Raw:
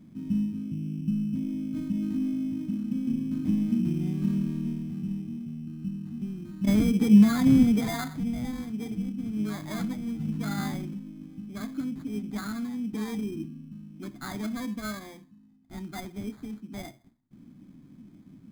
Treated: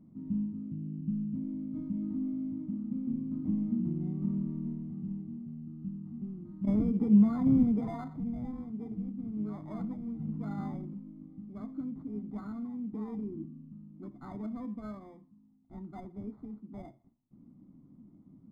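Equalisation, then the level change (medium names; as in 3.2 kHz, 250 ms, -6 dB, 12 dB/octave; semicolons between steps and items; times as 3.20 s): Savitzky-Golay filter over 65 samples; -5.5 dB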